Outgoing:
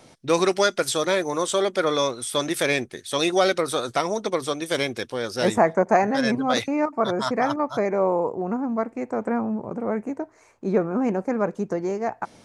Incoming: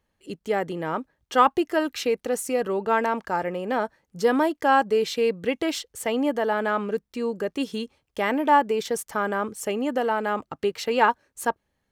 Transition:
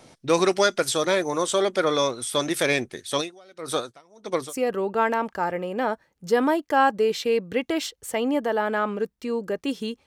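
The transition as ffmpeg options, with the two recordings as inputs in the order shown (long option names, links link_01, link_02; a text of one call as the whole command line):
ffmpeg -i cue0.wav -i cue1.wav -filter_complex "[0:a]asplit=3[link_01][link_02][link_03];[link_01]afade=type=out:start_time=3.2:duration=0.02[link_04];[link_02]aeval=exprs='val(0)*pow(10,-32*(0.5-0.5*cos(2*PI*1.6*n/s))/20)':channel_layout=same,afade=type=in:start_time=3.2:duration=0.02,afade=type=out:start_time=4.54:duration=0.02[link_05];[link_03]afade=type=in:start_time=4.54:duration=0.02[link_06];[link_04][link_05][link_06]amix=inputs=3:normalize=0,apad=whole_dur=10.06,atrim=end=10.06,atrim=end=4.54,asetpts=PTS-STARTPTS[link_07];[1:a]atrim=start=2.4:end=7.98,asetpts=PTS-STARTPTS[link_08];[link_07][link_08]acrossfade=duration=0.06:curve1=tri:curve2=tri" out.wav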